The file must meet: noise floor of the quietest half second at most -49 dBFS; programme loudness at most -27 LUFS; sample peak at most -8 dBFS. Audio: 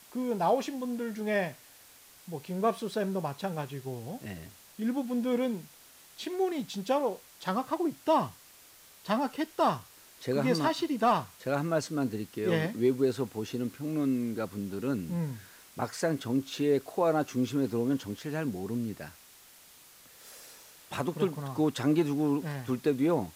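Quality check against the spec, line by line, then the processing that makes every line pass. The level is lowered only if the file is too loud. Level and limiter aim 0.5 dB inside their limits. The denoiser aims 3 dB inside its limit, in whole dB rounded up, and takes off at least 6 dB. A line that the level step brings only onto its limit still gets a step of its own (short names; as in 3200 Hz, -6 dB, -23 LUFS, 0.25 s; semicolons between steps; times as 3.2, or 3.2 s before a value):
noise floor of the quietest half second -56 dBFS: OK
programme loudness -31.0 LUFS: OK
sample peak -15.5 dBFS: OK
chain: none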